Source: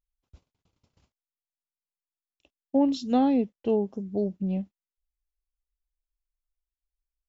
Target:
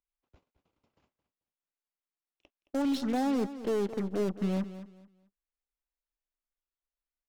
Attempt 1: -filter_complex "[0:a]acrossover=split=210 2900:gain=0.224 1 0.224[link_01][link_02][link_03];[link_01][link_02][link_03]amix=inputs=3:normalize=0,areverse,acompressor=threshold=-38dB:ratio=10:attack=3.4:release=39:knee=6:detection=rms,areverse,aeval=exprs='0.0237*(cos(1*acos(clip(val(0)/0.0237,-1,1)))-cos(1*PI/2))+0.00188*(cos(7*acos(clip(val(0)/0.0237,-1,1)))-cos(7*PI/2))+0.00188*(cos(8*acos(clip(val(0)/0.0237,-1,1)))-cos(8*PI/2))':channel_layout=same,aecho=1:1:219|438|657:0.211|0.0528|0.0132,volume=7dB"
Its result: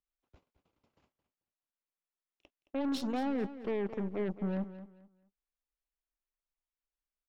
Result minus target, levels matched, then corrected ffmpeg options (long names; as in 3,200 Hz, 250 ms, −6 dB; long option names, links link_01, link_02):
downward compressor: peak gain reduction +6 dB
-filter_complex "[0:a]acrossover=split=210 2900:gain=0.224 1 0.224[link_01][link_02][link_03];[link_01][link_02][link_03]amix=inputs=3:normalize=0,areverse,acompressor=threshold=-31.5dB:ratio=10:attack=3.4:release=39:knee=6:detection=rms,areverse,aeval=exprs='0.0237*(cos(1*acos(clip(val(0)/0.0237,-1,1)))-cos(1*PI/2))+0.00188*(cos(7*acos(clip(val(0)/0.0237,-1,1)))-cos(7*PI/2))+0.00188*(cos(8*acos(clip(val(0)/0.0237,-1,1)))-cos(8*PI/2))':channel_layout=same,aecho=1:1:219|438|657:0.211|0.0528|0.0132,volume=7dB"